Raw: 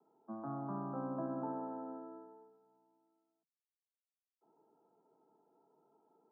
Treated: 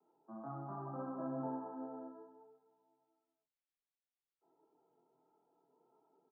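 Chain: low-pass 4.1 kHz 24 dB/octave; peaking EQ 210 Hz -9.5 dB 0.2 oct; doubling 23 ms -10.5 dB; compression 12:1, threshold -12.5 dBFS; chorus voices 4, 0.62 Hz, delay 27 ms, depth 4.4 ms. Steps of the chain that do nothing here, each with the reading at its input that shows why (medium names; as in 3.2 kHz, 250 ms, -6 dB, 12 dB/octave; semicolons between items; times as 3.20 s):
low-pass 4.1 kHz: input has nothing above 1.4 kHz; compression, threshold -12.5 dBFS: peak at its input -27.5 dBFS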